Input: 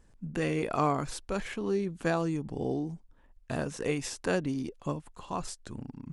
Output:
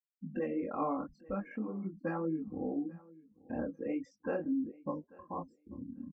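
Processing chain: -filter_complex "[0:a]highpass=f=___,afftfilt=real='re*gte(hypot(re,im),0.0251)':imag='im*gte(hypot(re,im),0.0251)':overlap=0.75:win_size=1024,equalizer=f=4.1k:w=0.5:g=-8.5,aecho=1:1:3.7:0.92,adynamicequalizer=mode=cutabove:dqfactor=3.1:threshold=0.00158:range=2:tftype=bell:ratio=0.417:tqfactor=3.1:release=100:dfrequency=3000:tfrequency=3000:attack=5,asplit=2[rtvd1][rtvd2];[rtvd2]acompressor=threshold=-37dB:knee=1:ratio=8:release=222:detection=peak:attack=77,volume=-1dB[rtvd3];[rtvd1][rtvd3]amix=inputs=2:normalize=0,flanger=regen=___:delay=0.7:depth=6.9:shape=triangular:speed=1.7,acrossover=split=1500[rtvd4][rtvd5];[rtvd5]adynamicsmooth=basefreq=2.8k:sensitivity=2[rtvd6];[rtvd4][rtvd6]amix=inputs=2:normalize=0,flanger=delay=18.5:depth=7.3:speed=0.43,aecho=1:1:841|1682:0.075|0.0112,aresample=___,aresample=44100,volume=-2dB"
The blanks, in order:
66, -72, 16000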